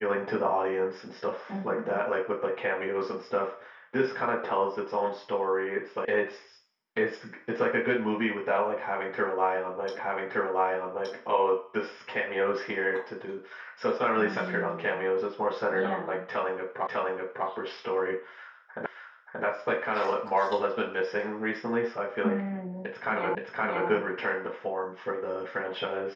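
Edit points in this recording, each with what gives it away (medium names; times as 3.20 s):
6.05 s: sound stops dead
9.99 s: repeat of the last 1.17 s
16.87 s: repeat of the last 0.6 s
18.86 s: repeat of the last 0.58 s
23.35 s: repeat of the last 0.52 s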